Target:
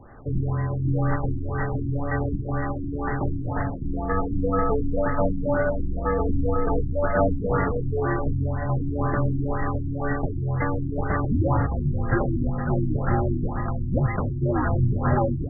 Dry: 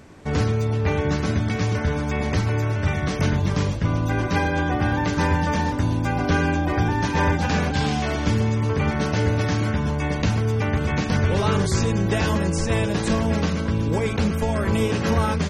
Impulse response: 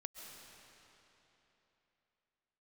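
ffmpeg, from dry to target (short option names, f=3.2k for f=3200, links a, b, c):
-filter_complex "[0:a]highpass=f=250:t=q:w=0.5412,highpass=f=250:t=q:w=1.307,lowpass=f=3.1k:t=q:w=0.5176,lowpass=f=3.1k:t=q:w=0.7071,lowpass=f=3.1k:t=q:w=1.932,afreqshift=-310[a];[1:a]atrim=start_sample=2205,atrim=end_sample=4410,asetrate=31752,aresample=44100[b];[a][b]afir=irnorm=-1:irlink=0,afftfilt=real='re*lt(b*sr/1024,350*pow(2100/350,0.5+0.5*sin(2*PI*2*pts/sr)))':imag='im*lt(b*sr/1024,350*pow(2100/350,0.5+0.5*sin(2*PI*2*pts/sr)))':win_size=1024:overlap=0.75,volume=8dB"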